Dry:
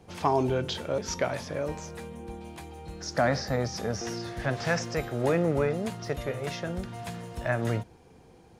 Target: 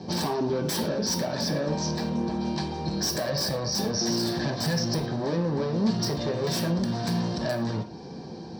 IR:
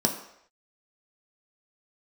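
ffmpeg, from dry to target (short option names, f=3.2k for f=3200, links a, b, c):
-filter_complex "[0:a]asettb=1/sr,asplit=3[a][b][c];[a]atrim=end=3.044[d];[b]atrim=start=3.04:end=3.77,asetpts=PTS-STARTPTS,afade=t=in:d=0.004:c=qsin,afade=t=out:st=0.726:d=0.004:c=qsin,aecho=1:1:1.8:0.92,atrim=end_sample=32193[e];[c]atrim=start=3.766[f];[d][e]acrossfade=d=0.004:c1=hsin:c2=qsin[g];[g][f]acrossfade=d=0.004:c1=qsin:c2=hsin,asettb=1/sr,asplit=3[h][i][j];[h]atrim=end=4.604[k];[i]atrim=start=4.6:end=5.2,asetpts=PTS-STARTPTS,afade=t=in:d=0.004:c=qsin,afade=t=out:st=0.596:d=0.004:c=qsin,lowshelf=f=120:g=9.5[l];[j]atrim=start=5.196[m];[k][l]acrossfade=d=0.004:c1=hsin:c2=qsin[n];[n][m]acrossfade=d=0.004:c1=qsin:c2=hsin,acompressor=threshold=-34dB:ratio=10,asoftclip=type=hard:threshold=-39.5dB,lowpass=f=4.5k:t=q:w=3.9,aeval=exprs='(mod(42.2*val(0)+1,2)-1)/42.2':c=same[o];[1:a]atrim=start_sample=2205,afade=t=out:st=0.17:d=0.01,atrim=end_sample=7938[p];[o][p]afir=irnorm=-1:irlink=0"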